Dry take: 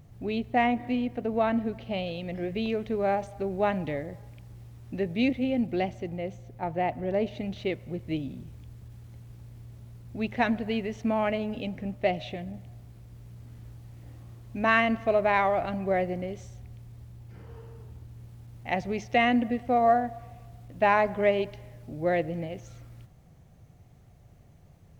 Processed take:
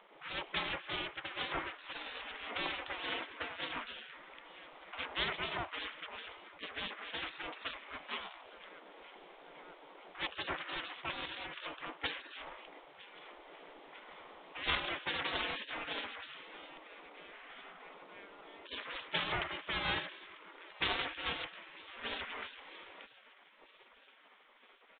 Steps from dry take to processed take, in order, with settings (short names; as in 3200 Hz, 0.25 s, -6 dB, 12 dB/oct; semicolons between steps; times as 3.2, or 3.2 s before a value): minimum comb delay 0.92 ms; 2.46–3.56 low shelf 460 Hz +5 dB; feedback echo 0.945 s, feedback 54%, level -23.5 dB; spectral gate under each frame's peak -25 dB weak; downsampling 8000 Hz; gain +10 dB